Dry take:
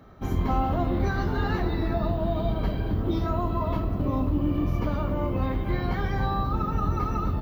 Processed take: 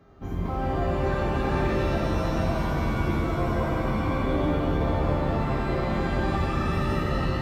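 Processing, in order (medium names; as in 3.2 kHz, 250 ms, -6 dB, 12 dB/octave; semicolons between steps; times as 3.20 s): mains buzz 400 Hz, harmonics 17, -59 dBFS -6 dB/octave; treble shelf 3 kHz -8 dB; pitch-shifted reverb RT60 3.1 s, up +7 st, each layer -2 dB, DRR -1 dB; trim -5.5 dB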